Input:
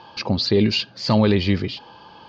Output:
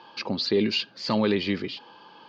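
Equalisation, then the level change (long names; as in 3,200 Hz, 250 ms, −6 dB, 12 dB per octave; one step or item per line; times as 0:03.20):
high-pass filter 240 Hz 12 dB per octave
parametric band 690 Hz −5 dB 0.82 octaves
parametric band 6,000 Hz −4 dB 1.1 octaves
−2.5 dB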